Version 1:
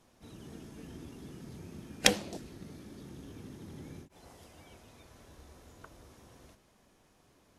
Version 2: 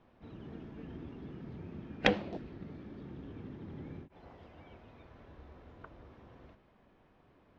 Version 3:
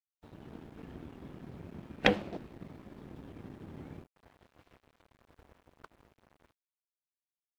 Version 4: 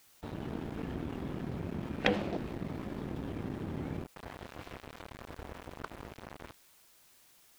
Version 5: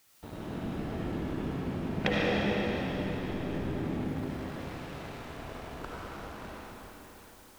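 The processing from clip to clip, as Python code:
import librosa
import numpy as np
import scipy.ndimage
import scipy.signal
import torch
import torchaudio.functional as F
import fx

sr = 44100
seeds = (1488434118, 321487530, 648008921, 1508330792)

y1 = scipy.signal.sosfilt(scipy.signal.bessel(4, 2200.0, 'lowpass', norm='mag', fs=sr, output='sos'), x)
y1 = y1 * librosa.db_to_amplitude(1.5)
y2 = fx.dmg_noise_colour(y1, sr, seeds[0], colour='pink', level_db=-73.0)
y2 = np.sign(y2) * np.maximum(np.abs(y2) - 10.0 ** (-51.5 / 20.0), 0.0)
y2 = y2 * librosa.db_to_amplitude(2.0)
y3 = fx.env_flatten(y2, sr, amount_pct=50)
y3 = y3 * librosa.db_to_amplitude(-4.5)
y4 = fx.rev_freeverb(y3, sr, rt60_s=4.2, hf_ratio=0.95, predelay_ms=35, drr_db=-6.5)
y4 = y4 * librosa.db_to_amplitude(-2.5)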